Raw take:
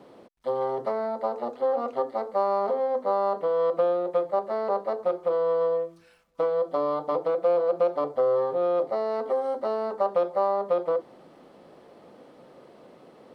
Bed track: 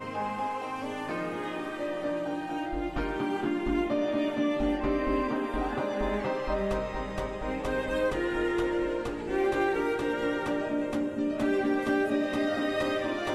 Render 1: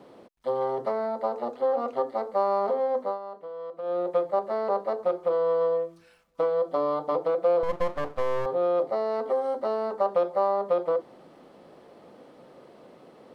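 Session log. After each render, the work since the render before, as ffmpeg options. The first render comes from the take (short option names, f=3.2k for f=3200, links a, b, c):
-filter_complex "[0:a]asettb=1/sr,asplit=3[a][b][c];[a]atrim=end=7.634[d];[b]atrim=start=7.63:end=8.46,asetpts=PTS-STARTPTS,afade=t=in:d=0.004:c=qsin,afade=t=out:st=0.826:d=0.004:c=qsin,aeval=exprs='max(val(0),0)':c=same[e];[c]atrim=start=8.456[f];[d][e]acrossfade=d=0.004:c1=hsin:c2=qsin[g];[g][f]acrossfade=d=0.004:c1=qsin:c2=hsin,asplit=3[h][i][j];[h]atrim=end=3.19,asetpts=PTS-STARTPTS,afade=t=out:st=3.01:d=0.18:silence=0.211349[k];[i]atrim=start=3.19:end=3.82,asetpts=PTS-STARTPTS,volume=-13.5dB[l];[j]atrim=start=3.82,asetpts=PTS-STARTPTS,afade=t=in:d=0.18:silence=0.211349[m];[k][l][m]concat=n=3:v=0:a=1"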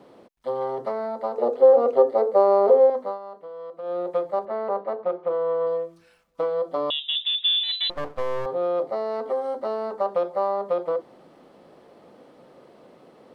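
-filter_complex "[0:a]asettb=1/sr,asplit=3[a][b][c];[a]atrim=end=1.384[d];[b]atrim=start=1.38:end=2.9,asetpts=PTS-STARTPTS,afade=t=in:d=0.004:c=qsin,afade=t=out:st=1.516:d=0.004:c=qsin,equalizer=f=460:w=1.5:g=14[e];[c]atrim=start=2.896[f];[d][e]acrossfade=d=0.004:c1=hsin:c2=qsin[g];[g][f]acrossfade=d=0.004:c1=qsin:c2=hsin,asettb=1/sr,asplit=3[h][i][j];[h]atrim=end=4.454[k];[i]atrim=start=4.45:end=5.67,asetpts=PTS-STARTPTS,afade=t=in:d=0.004:c=qsin,afade=t=out:st=1.216:d=0.004:c=qsin,highpass=110,lowpass=2.8k[l];[j]atrim=start=5.666[m];[k][l]acrossfade=d=0.004:c1=hsin:c2=qsin[n];[n][m]acrossfade=d=0.004:c1=qsin:c2=hsin,asettb=1/sr,asplit=3[o][p][q];[o]atrim=end=6.904[r];[p]atrim=start=6.9:end=7.9,asetpts=PTS-STARTPTS,afade=t=in:d=0.004:c=qsin,afade=t=out:st=0.996:d=0.004:c=qsin,lowpass=f=3.4k:t=q:w=0.5098,lowpass=f=3.4k:t=q:w=0.6013,lowpass=f=3.4k:t=q:w=0.9,lowpass=f=3.4k:t=q:w=2.563,afreqshift=-4000[s];[q]atrim=start=7.896[t];[r][s]acrossfade=d=0.004:c1=hsin:c2=qsin[u];[u][t]acrossfade=d=0.004:c1=qsin:c2=hsin"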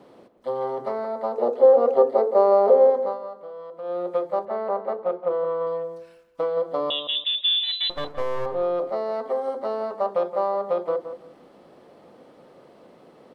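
-filter_complex "[0:a]asplit=2[a][b];[b]adelay=170,lowpass=f=2k:p=1,volume=-10dB,asplit=2[c][d];[d]adelay=170,lowpass=f=2k:p=1,volume=0.23,asplit=2[e][f];[f]adelay=170,lowpass=f=2k:p=1,volume=0.23[g];[a][c][e][g]amix=inputs=4:normalize=0"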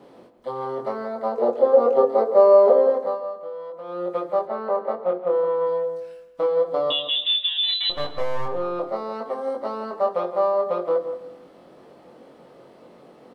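-filter_complex "[0:a]asplit=2[a][b];[b]adelay=22,volume=-2.5dB[c];[a][c]amix=inputs=2:normalize=0,aecho=1:1:128|256|384:0.119|0.0511|0.022"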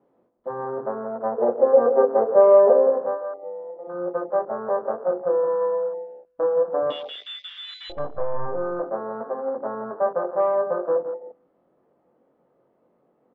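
-af "afwtdn=0.0282,lowpass=1.5k"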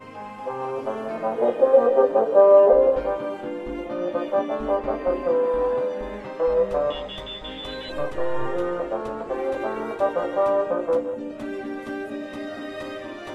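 -filter_complex "[1:a]volume=-4.5dB[a];[0:a][a]amix=inputs=2:normalize=0"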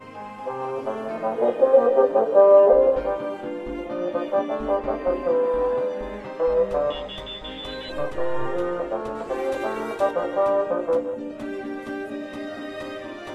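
-filter_complex "[0:a]asettb=1/sr,asplit=3[a][b][c];[a]atrim=end=9.154[d];[b]atrim=start=9.15:end=10.11,asetpts=PTS-STARTPTS,afade=t=in:d=0.004:c=qsin,afade=t=out:st=0.956:d=0.004:c=qsin,highshelf=f=3.2k:g=9.5[e];[c]atrim=start=10.106[f];[d][e]acrossfade=d=0.004:c1=hsin:c2=qsin[g];[g][f]acrossfade=d=0.004:c1=qsin:c2=hsin"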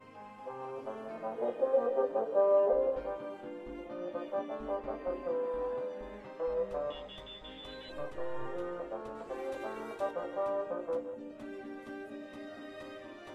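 -af "volume=-13dB"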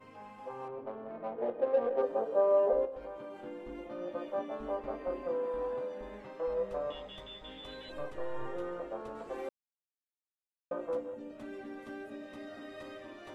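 -filter_complex "[0:a]asettb=1/sr,asplit=3[a][b][c];[a]atrim=end=0.684[d];[b]atrim=start=0.68:end=2.02,asetpts=PTS-STARTPTS,afade=t=in:d=0.004:c=qsin,afade=t=out:st=1.336:d=0.004:c=qsin,adynamicsmooth=sensitivity=3:basefreq=1.3k[e];[c]atrim=start=2.016[f];[d][e]acrossfade=d=0.004:c1=hsin:c2=qsin[g];[g][f]acrossfade=d=0.004:c1=qsin:c2=hsin,asettb=1/sr,asplit=3[h][i][j];[h]atrim=end=2.854[k];[i]atrim=start=2.85:end=3.41,asetpts=PTS-STARTPTS,afade=t=in:d=0.004:c=qsin,afade=t=out:st=0.556:d=0.004:c=qsin,acompressor=threshold=-41dB:ratio=3:attack=3.2:release=140:knee=1:detection=peak[l];[j]atrim=start=3.406[m];[k][l]acrossfade=d=0.004:c1=hsin:c2=qsin[n];[n][m]acrossfade=d=0.004:c1=qsin:c2=hsin,asplit=3[o][p][q];[o]atrim=end=9.49,asetpts=PTS-STARTPTS,afade=t=out:st=9.486:d=0.004:c=hsin[r];[p]atrim=start=9.49:end=10.71,asetpts=PTS-STARTPTS,volume=0[s];[q]atrim=start=10.71,asetpts=PTS-STARTPTS,afade=t=in:d=0.004:c=hsin[t];[r][s][t]concat=n=3:v=0:a=1"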